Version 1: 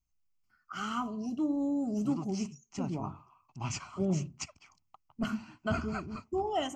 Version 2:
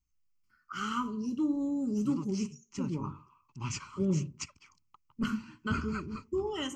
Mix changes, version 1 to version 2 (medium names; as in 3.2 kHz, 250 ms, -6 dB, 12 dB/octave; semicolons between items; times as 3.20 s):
first voice: send +10.0 dB; master: add Butterworth band-stop 700 Hz, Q 1.8